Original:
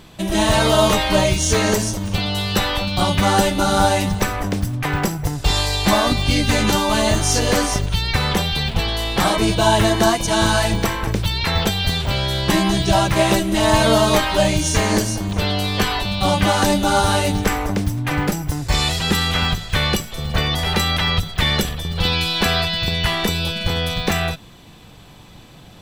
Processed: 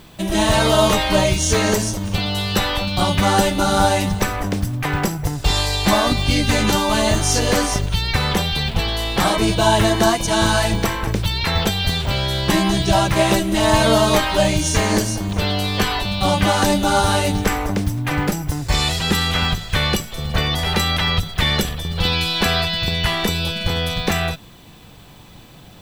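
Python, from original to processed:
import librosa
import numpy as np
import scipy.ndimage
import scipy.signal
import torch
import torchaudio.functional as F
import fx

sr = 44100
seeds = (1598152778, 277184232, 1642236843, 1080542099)

y = fx.dmg_noise_colour(x, sr, seeds[0], colour='violet', level_db=-58.0)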